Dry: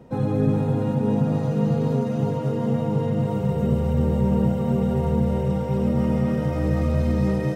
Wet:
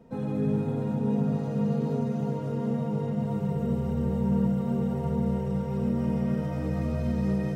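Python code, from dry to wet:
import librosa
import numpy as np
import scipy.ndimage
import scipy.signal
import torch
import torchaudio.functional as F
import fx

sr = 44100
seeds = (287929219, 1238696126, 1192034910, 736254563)

y = fx.room_shoebox(x, sr, seeds[0], volume_m3=3100.0, walls='furnished', distance_m=1.6)
y = y * 10.0 ** (-8.0 / 20.0)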